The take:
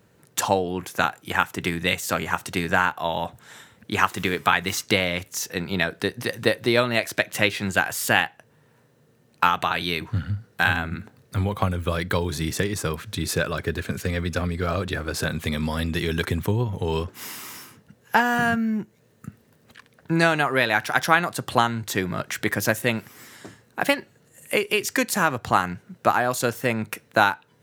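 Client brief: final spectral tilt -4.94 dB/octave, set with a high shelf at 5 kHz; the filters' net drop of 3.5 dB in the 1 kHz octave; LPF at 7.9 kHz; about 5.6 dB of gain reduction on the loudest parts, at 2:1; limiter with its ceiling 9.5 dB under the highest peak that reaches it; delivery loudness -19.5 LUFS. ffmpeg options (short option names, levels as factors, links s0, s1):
-af "lowpass=7900,equalizer=f=1000:t=o:g=-4.5,highshelf=f=5000:g=-6,acompressor=threshold=0.0501:ratio=2,volume=3.98,alimiter=limit=0.596:level=0:latency=1"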